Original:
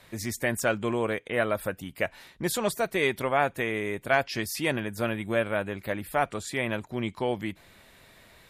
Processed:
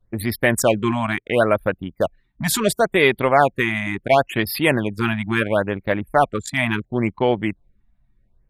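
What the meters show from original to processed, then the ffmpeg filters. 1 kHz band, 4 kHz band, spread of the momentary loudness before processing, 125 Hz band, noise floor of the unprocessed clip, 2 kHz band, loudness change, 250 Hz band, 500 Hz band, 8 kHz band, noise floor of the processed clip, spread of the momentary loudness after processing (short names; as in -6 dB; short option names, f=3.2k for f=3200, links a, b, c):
+9.5 dB, +8.0 dB, 7 LU, +10.0 dB, -57 dBFS, +7.5 dB, +8.5 dB, +9.5 dB, +8.5 dB, +7.5 dB, -64 dBFS, 8 LU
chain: -af "acontrast=55,anlmdn=63.1,afftfilt=real='re*(1-between(b*sr/1024,400*pow(7600/400,0.5+0.5*sin(2*PI*0.72*pts/sr))/1.41,400*pow(7600/400,0.5+0.5*sin(2*PI*0.72*pts/sr))*1.41))':imag='im*(1-between(b*sr/1024,400*pow(7600/400,0.5+0.5*sin(2*PI*0.72*pts/sr))/1.41,400*pow(7600/400,0.5+0.5*sin(2*PI*0.72*pts/sr))*1.41))':win_size=1024:overlap=0.75,volume=4dB"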